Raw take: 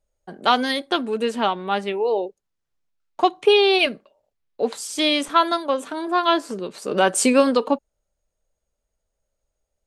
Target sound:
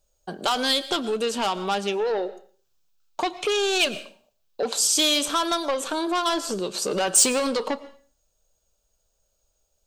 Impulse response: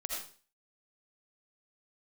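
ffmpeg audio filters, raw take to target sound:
-filter_complex "[0:a]equalizer=f=250:t=o:w=0.33:g=-5,equalizer=f=2000:t=o:w=0.33:g=-11,equalizer=f=10000:t=o:w=0.33:g=-10,alimiter=limit=0.299:level=0:latency=1:release=46,asoftclip=type=tanh:threshold=0.119,asplit=2[s0][s1];[1:a]atrim=start_sample=2205,adelay=30[s2];[s1][s2]afir=irnorm=-1:irlink=0,volume=0.126[s3];[s0][s3]amix=inputs=2:normalize=0,acompressor=threshold=0.0355:ratio=2.5,highshelf=f=2700:g=11.5,volume=1.58"

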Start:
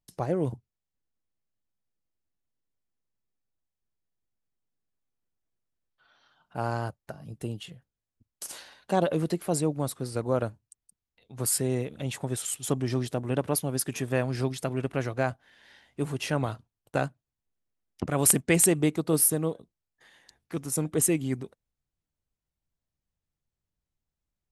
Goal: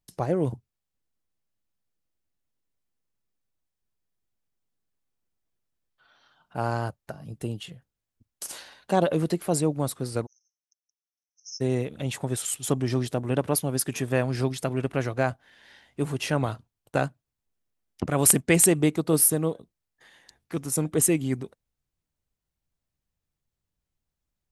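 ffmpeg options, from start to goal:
-filter_complex "[0:a]asplit=3[s0][s1][s2];[s0]afade=t=out:st=10.25:d=0.02[s3];[s1]asuperpass=centerf=5800:order=12:qfactor=4.7,afade=t=in:st=10.25:d=0.02,afade=t=out:st=11.6:d=0.02[s4];[s2]afade=t=in:st=11.6:d=0.02[s5];[s3][s4][s5]amix=inputs=3:normalize=0,volume=1.33"

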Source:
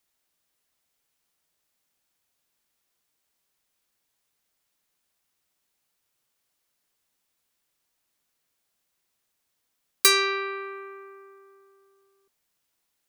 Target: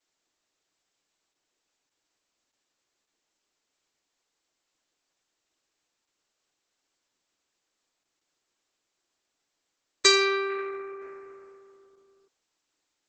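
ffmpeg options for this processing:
-af "lowshelf=f=230:t=q:w=3:g=-9" -ar 48000 -c:a libopus -b:a 10k

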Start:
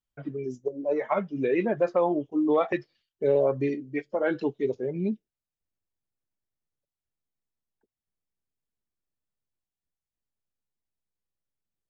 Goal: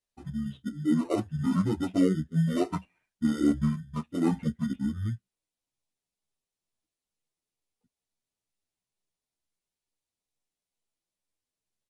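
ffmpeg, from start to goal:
-filter_complex "[0:a]bass=f=250:g=-5,treble=f=4000:g=7,asplit=2[s0][s1];[s1]acrusher=samples=14:mix=1:aa=0.000001,volume=0.447[s2];[s0][s2]amix=inputs=2:normalize=0,asetrate=23361,aresample=44100,atempo=1.88775,asplit=2[s3][s4];[s4]adelay=10.2,afreqshift=2.2[s5];[s3][s5]amix=inputs=2:normalize=1"

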